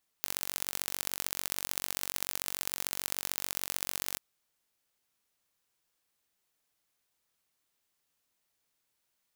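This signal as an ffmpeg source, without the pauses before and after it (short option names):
-f lavfi -i "aevalsrc='0.631*eq(mod(n,942),0)*(0.5+0.5*eq(mod(n,2826),0))':d=3.94:s=44100"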